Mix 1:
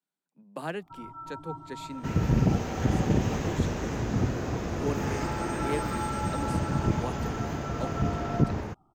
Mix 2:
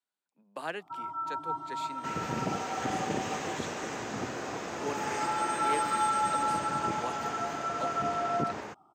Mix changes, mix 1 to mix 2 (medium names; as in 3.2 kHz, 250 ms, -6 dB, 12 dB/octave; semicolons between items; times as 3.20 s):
first sound +7.0 dB; second sound: add peaking EQ 8.2 kHz +11 dB 0.24 oct; master: add frequency weighting A